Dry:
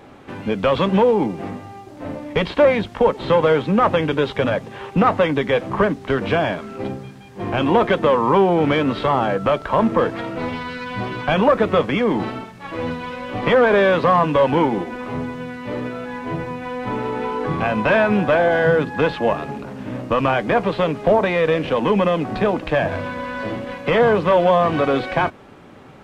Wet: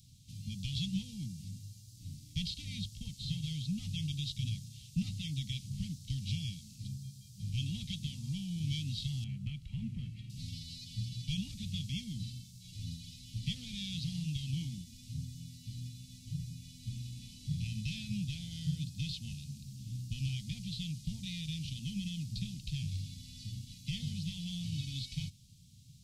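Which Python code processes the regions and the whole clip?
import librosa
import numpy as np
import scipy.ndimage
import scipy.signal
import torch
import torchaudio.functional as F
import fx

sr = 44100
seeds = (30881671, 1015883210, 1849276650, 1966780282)

y = fx.chain(x, sr, fx.high_shelf_res(hz=3300.0, db=-14.0, q=1.5),
    fx.notch(hz=3600.0, q=18.0), at=(9.24, 10.3))
y = fx.dynamic_eq(y, sr, hz=2300.0, q=0.92, threshold_db=-31.0, ratio=4.0, max_db=4)
y = scipy.signal.sosfilt(scipy.signal.cheby2(4, 60, [370.0, 1700.0], 'bandstop', fs=sr, output='sos'), y)
y = fx.low_shelf(y, sr, hz=130.0, db=-11.5)
y = y * librosa.db_to_amplitude(1.5)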